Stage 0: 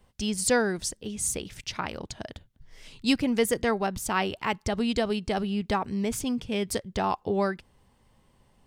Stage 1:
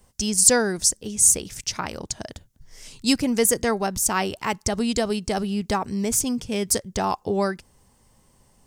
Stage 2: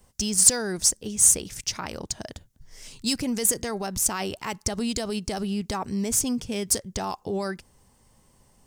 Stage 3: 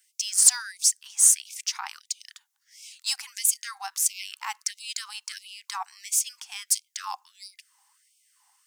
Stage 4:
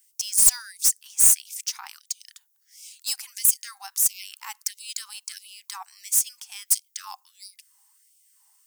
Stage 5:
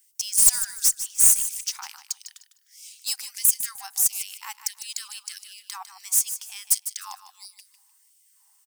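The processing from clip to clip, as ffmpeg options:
-af "highshelf=f=4.6k:t=q:w=1.5:g=8.5,volume=3dB"
-filter_complex "[0:a]acrossover=split=3600[a][b];[a]alimiter=limit=-20dB:level=0:latency=1:release=53[c];[b]acrusher=bits=5:mode=log:mix=0:aa=0.000001[d];[c][d]amix=inputs=2:normalize=0,volume=-1dB"
-af "afftfilt=real='re*gte(b*sr/1024,720*pow(2200/720,0.5+0.5*sin(2*PI*1.5*pts/sr)))':imag='im*gte(b*sr/1024,720*pow(2200/720,0.5+0.5*sin(2*PI*1.5*pts/sr)))':win_size=1024:overlap=0.75"
-af "aeval=exprs='clip(val(0),-1,0.1)':c=same,acontrast=64,aemphasis=mode=production:type=50fm,volume=-12.5dB"
-af "aecho=1:1:152|304|456:0.266|0.0639|0.0153"

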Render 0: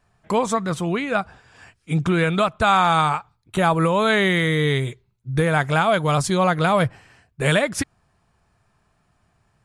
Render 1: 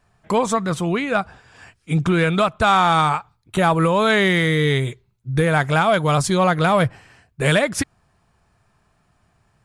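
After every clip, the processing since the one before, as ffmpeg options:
-af "acontrast=44,volume=-3.5dB"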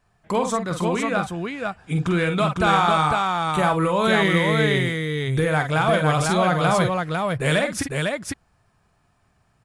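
-af "aecho=1:1:46|50|502:0.376|0.282|0.668,volume=-4dB"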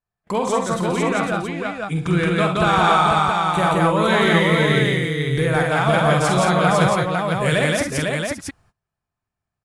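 -af "aecho=1:1:67.06|172:0.316|0.891,agate=range=-23dB:threshold=-52dB:ratio=16:detection=peak"

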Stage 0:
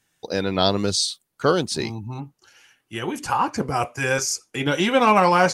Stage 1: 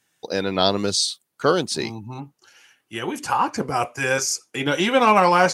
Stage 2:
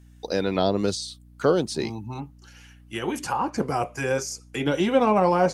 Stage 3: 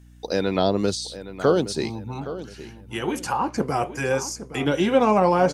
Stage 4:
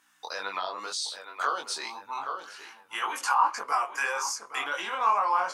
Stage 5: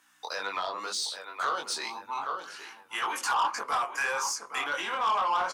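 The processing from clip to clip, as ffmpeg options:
-af "highpass=f=170:p=1,volume=1dB"
-filter_complex "[0:a]acrossover=split=780[a][b];[b]acompressor=threshold=-31dB:ratio=6[c];[a][c]amix=inputs=2:normalize=0,aeval=exprs='val(0)+0.00355*(sin(2*PI*60*n/s)+sin(2*PI*2*60*n/s)/2+sin(2*PI*3*60*n/s)/3+sin(2*PI*4*60*n/s)/4+sin(2*PI*5*60*n/s)/5)':c=same"
-filter_complex "[0:a]asplit=2[a][b];[b]adelay=817,lowpass=f=3.5k:p=1,volume=-13.5dB,asplit=2[c][d];[d]adelay=817,lowpass=f=3.5k:p=1,volume=0.34,asplit=2[e][f];[f]adelay=817,lowpass=f=3.5k:p=1,volume=0.34[g];[a][c][e][g]amix=inputs=4:normalize=0,volume=1.5dB"
-af "alimiter=limit=-17.5dB:level=0:latency=1:release=130,highpass=f=1.1k:t=q:w=3.6,flanger=delay=20:depth=3.5:speed=1.9,volume=2.5dB"
-filter_complex "[0:a]acrossover=split=300[a][b];[a]aecho=1:1:116:0.631[c];[b]asoftclip=type=tanh:threshold=-23.5dB[d];[c][d]amix=inputs=2:normalize=0,volume=1.5dB"

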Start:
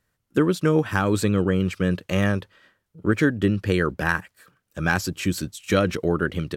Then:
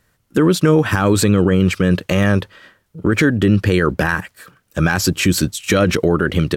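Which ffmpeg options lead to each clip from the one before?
-af "alimiter=level_in=15dB:limit=-1dB:release=50:level=0:latency=1,volume=-3dB"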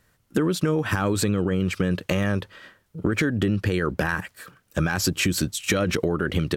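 -af "acompressor=threshold=-17dB:ratio=6,volume=-2dB"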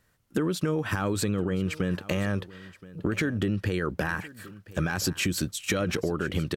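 -af "aecho=1:1:1024:0.112,volume=-4.5dB"

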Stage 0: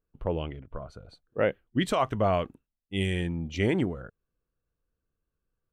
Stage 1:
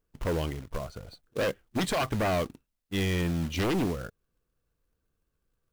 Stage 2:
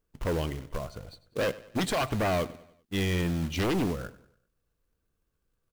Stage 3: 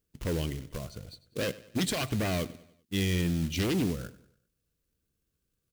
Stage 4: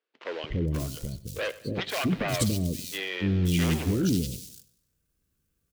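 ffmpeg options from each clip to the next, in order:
-af "aeval=exprs='0.2*sin(PI/2*2.51*val(0)/0.2)':c=same,acrusher=bits=3:mode=log:mix=0:aa=0.000001,volume=-8dB"
-af "aecho=1:1:97|194|291|388:0.119|0.0547|0.0251|0.0116"
-af "highpass=f=96:p=1,equalizer=f=910:w=0.61:g=-12.5,volume=3.5dB"
-filter_complex "[0:a]acrossover=split=440|3800[a][b][c];[a]adelay=290[d];[c]adelay=530[e];[d][b][e]amix=inputs=3:normalize=0,volume=4.5dB"

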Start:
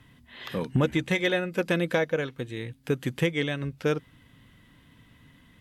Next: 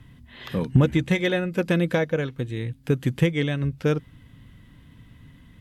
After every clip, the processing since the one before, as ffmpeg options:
-af "lowshelf=f=210:g=11.5"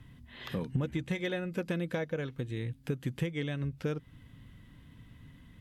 -af "acompressor=threshold=-28dB:ratio=2.5,volume=-4.5dB"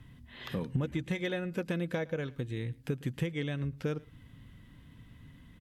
-filter_complex "[0:a]asplit=2[a][b];[b]adelay=110.8,volume=-23dB,highshelf=f=4k:g=-2.49[c];[a][c]amix=inputs=2:normalize=0"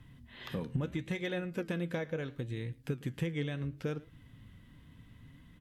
-af "flanger=delay=5.5:depth=8.3:regen=79:speed=0.73:shape=triangular,volume=2.5dB"

